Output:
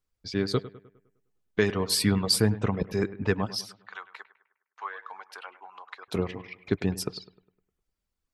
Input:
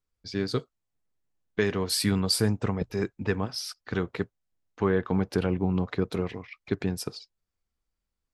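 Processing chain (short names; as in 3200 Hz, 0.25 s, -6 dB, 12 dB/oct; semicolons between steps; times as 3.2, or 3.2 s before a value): reverb removal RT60 0.59 s; 3.61–6.08 ladder high-pass 840 Hz, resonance 45%; analogue delay 0.102 s, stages 2048, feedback 46%, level -16 dB; gain +2 dB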